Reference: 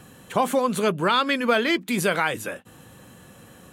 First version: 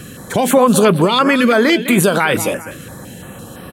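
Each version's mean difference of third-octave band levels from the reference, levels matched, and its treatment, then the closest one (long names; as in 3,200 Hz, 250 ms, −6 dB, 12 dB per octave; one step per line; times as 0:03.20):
5.0 dB: repeating echo 203 ms, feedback 27%, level −15.5 dB
boost into a limiter +16 dB
notch on a step sequencer 5.9 Hz 870–6,800 Hz
level −1 dB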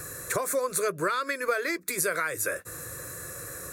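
8.5 dB: high-shelf EQ 2,500 Hz +10 dB
downward compressor 6 to 1, threshold −31 dBFS, peak gain reduction 16.5 dB
phaser with its sweep stopped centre 830 Hz, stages 6
level +8 dB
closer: first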